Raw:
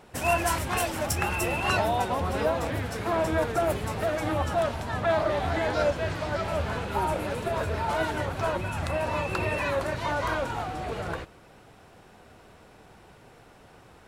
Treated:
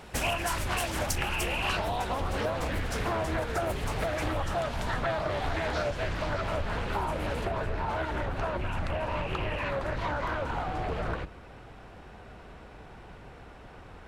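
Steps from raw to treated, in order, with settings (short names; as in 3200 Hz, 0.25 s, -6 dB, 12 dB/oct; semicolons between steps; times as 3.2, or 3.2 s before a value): octaver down 2 oct, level +3 dB; bell 2600 Hz +4 dB 2.7 oct; compressor 6:1, threshold -30 dBFS, peak gain reduction 12.5 dB; high shelf 3500 Hz +3 dB, from 6.09 s -2 dB, from 7.45 s -10 dB; Doppler distortion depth 0.45 ms; gain +2.5 dB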